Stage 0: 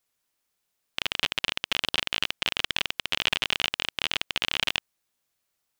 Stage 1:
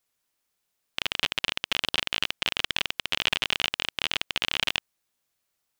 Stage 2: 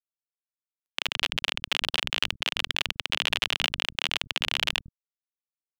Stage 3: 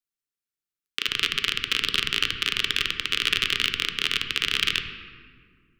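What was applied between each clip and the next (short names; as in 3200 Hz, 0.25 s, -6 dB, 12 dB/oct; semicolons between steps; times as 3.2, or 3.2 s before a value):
nothing audible
bit-crush 11-bit; bands offset in time highs, lows 0.1 s, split 200 Hz
elliptic band-stop 440–1200 Hz, stop band 40 dB; on a send at -6 dB: reverb RT60 2.0 s, pre-delay 6 ms; on the sum: gain +3.5 dB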